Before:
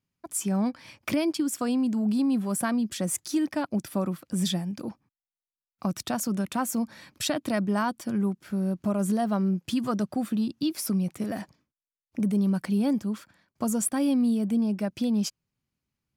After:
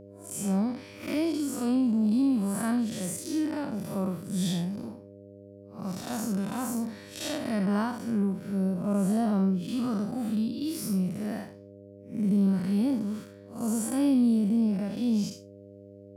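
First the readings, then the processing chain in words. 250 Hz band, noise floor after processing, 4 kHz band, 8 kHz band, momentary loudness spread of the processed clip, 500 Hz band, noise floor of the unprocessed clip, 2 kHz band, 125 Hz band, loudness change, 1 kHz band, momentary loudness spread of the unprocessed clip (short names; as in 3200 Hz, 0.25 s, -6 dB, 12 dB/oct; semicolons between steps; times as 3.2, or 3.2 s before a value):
-0.5 dB, -49 dBFS, -4.5 dB, -5.0 dB, 12 LU, -2.0 dB, under -85 dBFS, -4.5 dB, +0.5 dB, -1.0 dB, -4.5 dB, 8 LU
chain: time blur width 0.156 s; buzz 100 Hz, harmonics 6, -50 dBFS 0 dB/oct; gain +1.5 dB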